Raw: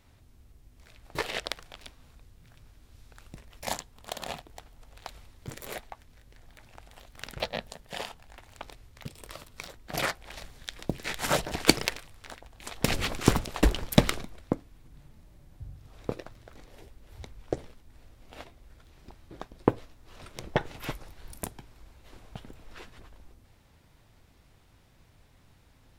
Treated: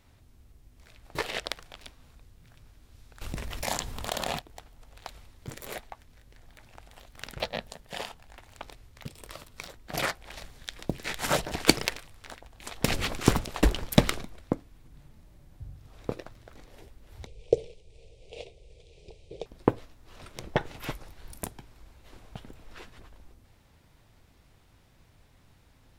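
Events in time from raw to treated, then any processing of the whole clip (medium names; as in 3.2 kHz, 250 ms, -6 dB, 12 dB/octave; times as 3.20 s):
3.21–4.39 s: level flattener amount 70%
17.26–19.46 s: FFT filter 170 Hz 0 dB, 260 Hz -14 dB, 450 Hz +14 dB, 790 Hz -6 dB, 1.5 kHz -29 dB, 2.4 kHz +5 dB, 9 kHz +1 dB, 13 kHz -24 dB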